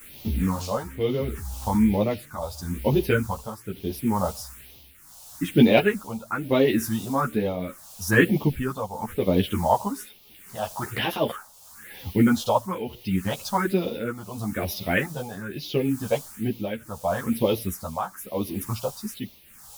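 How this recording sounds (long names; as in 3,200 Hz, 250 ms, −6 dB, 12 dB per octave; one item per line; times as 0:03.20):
a quantiser's noise floor 8 bits, dither triangular
phaser sweep stages 4, 1.1 Hz, lowest notch 310–1,500 Hz
tremolo triangle 0.76 Hz, depth 75%
a shimmering, thickened sound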